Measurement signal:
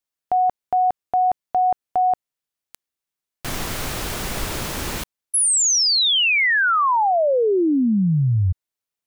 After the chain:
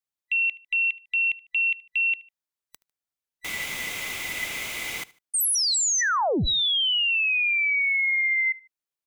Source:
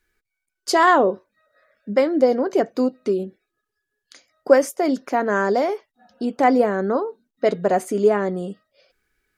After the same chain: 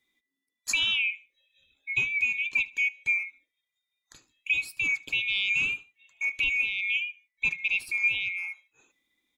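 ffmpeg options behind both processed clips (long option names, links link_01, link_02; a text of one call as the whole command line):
ffmpeg -i in.wav -filter_complex "[0:a]afftfilt=real='real(if(lt(b,920),b+92*(1-2*mod(floor(b/92),2)),b),0)':imag='imag(if(lt(b,920),b+92*(1-2*mod(floor(b/92),2)),b),0)':win_size=2048:overlap=0.75,alimiter=limit=-11dB:level=0:latency=1:release=483,asplit=2[link_01][link_02];[link_02]aecho=0:1:75|150:0.0841|0.0286[link_03];[link_01][link_03]amix=inputs=2:normalize=0,volume=-5.5dB" out.wav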